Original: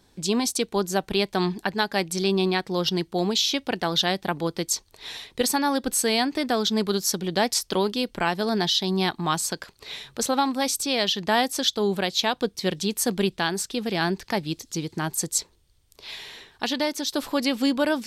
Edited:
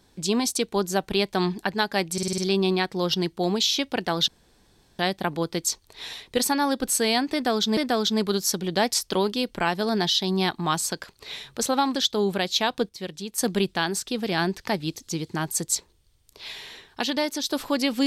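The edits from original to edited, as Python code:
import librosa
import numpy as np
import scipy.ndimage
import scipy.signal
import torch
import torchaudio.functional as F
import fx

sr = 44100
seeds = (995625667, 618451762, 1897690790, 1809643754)

y = fx.edit(x, sr, fx.stutter(start_s=2.13, slice_s=0.05, count=6),
    fx.insert_room_tone(at_s=4.03, length_s=0.71),
    fx.repeat(start_s=6.37, length_s=0.44, count=2),
    fx.cut(start_s=10.55, length_s=1.03),
    fx.clip_gain(start_s=12.52, length_s=0.49, db=-8.5), tone=tone)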